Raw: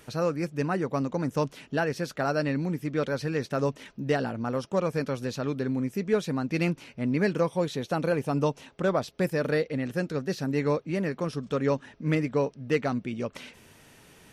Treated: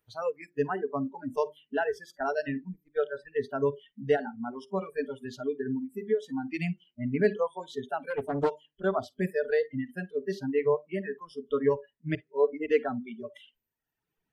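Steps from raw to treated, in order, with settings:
0:02.17–0:03.37: noise gate −28 dBFS, range −7 dB
0:05.82–0:06.36: downward compressor 20 to 1, threshold −25 dBFS, peak gain reduction 7.5 dB
reverb reduction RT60 1.6 s
mains-hum notches 50/100/150/200/250/300/350/400 Hz
0:12.15–0:12.66: reverse
convolution reverb RT60 0.30 s, pre-delay 46 ms, DRR 17.5 dB
noise reduction from a noise print of the clip's start 26 dB
high-shelf EQ 3,900 Hz −11 dB
notch filter 550 Hz, Q 12
dynamic equaliser 430 Hz, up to +6 dB, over −45 dBFS, Q 7
0:08.10–0:08.51: highs frequency-modulated by the lows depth 0.67 ms

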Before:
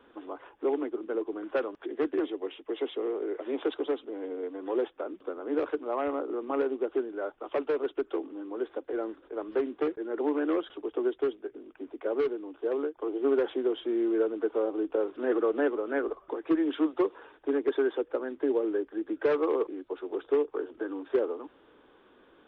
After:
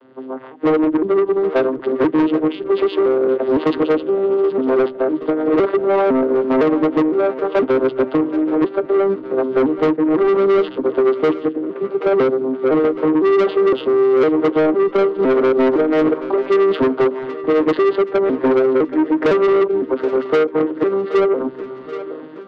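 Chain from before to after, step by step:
vocoder with an arpeggio as carrier minor triad, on C3, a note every 508 ms
automatic gain control gain up to 10 dB
soft clipping −22 dBFS, distortion −8 dB
echo with a time of its own for lows and highs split 310 Hz, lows 210 ms, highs 775 ms, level −15 dB
in parallel at +2 dB: downward compressor, threshold −27 dBFS, peak gain reduction 5.5 dB
on the sum: highs frequency-modulated by the lows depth 0.16 ms
level +5.5 dB

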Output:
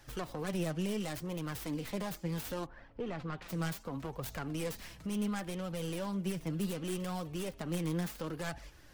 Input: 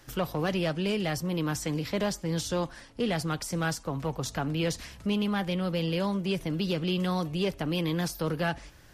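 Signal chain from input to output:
stylus tracing distortion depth 0.38 ms
0:02.65–0:03.48: low-pass filter 1,400 Hz → 3,300 Hz 12 dB per octave
in parallel at −1 dB: downward compressor, threshold −36 dBFS, peak gain reduction 12 dB
on the sum: brickwall limiter −20.5 dBFS, peak gain reduction 3.5 dB
flanger 0.7 Hz, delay 1.1 ms, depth 5.5 ms, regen +46%
level −5 dB

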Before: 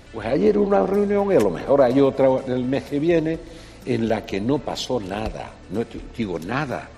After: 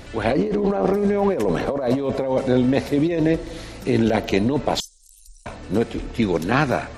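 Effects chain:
0:04.80–0:05.46: inverse Chebyshev band-stop filter 100–1,800 Hz, stop band 70 dB
compressor whose output falls as the input rises −22 dBFS, ratio −1
level +3 dB

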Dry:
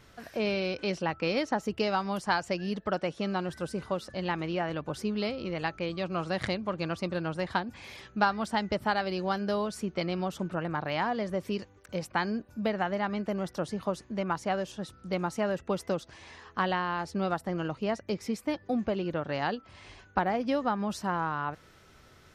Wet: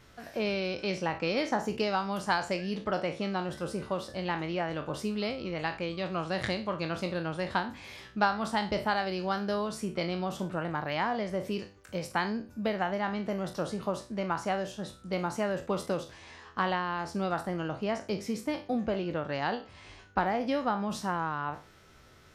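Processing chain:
peak hold with a decay on every bin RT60 0.33 s
level −1.5 dB

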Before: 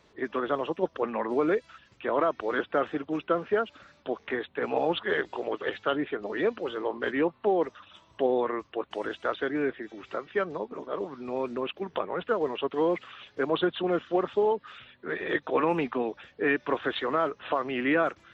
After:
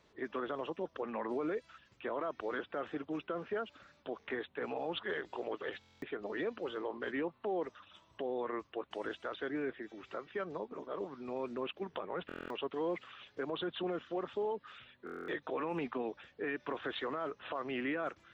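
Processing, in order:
brickwall limiter −22 dBFS, peak gain reduction 9 dB
buffer that repeats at 0:05.79/0:12.27/0:15.05, samples 1,024, times 9
level −6.5 dB

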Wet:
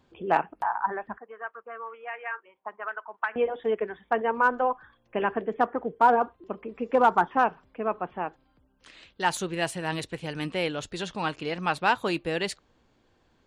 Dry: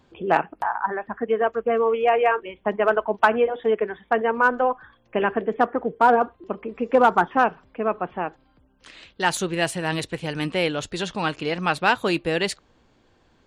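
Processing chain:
dynamic equaliser 930 Hz, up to +4 dB, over −30 dBFS, Q 2.4
0:01.18–0:03.36: envelope filter 770–1,900 Hz, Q 3.2, up, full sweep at −13 dBFS
level −5.5 dB

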